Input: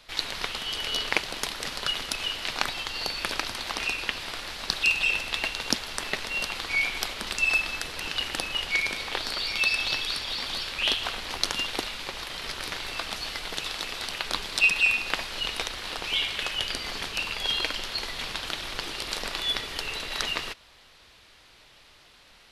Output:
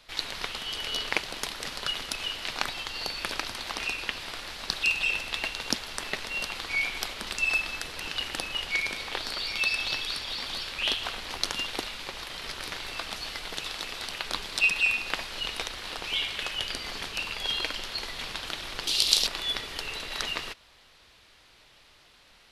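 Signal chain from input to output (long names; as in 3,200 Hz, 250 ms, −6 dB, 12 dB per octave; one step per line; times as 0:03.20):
0:18.87–0:19.27: high shelf with overshoot 2,600 Hz +12.5 dB, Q 1.5
level −2.5 dB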